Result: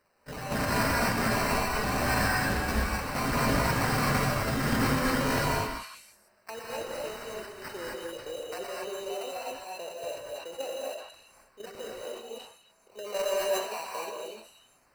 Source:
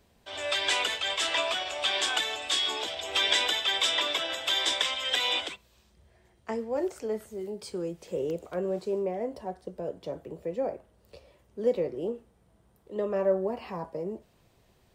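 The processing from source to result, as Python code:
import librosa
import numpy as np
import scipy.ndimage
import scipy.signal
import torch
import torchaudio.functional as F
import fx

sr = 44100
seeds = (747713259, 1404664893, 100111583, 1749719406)

y = fx.spec_dropout(x, sr, seeds[0], share_pct=23)
y = scipy.signal.sosfilt(scipy.signal.butter(2, 730.0, 'highpass', fs=sr, output='sos'), y)
y = fx.level_steps(y, sr, step_db=11)
y = fx.quant_companded(y, sr, bits=4, at=(6.57, 7.67))
y = fx.fold_sine(y, sr, drive_db=8, ceiling_db=-19.0)
y = fx.sample_hold(y, sr, seeds[1], rate_hz=3400.0, jitter_pct=0)
y = fx.echo_stepped(y, sr, ms=165, hz=1300.0, octaves=1.4, feedback_pct=70, wet_db=-5.5)
y = fx.rev_gated(y, sr, seeds[2], gate_ms=280, shape='rising', drr_db=-3.5)
y = fx.sustainer(y, sr, db_per_s=86.0)
y = y * librosa.db_to_amplitude(-7.0)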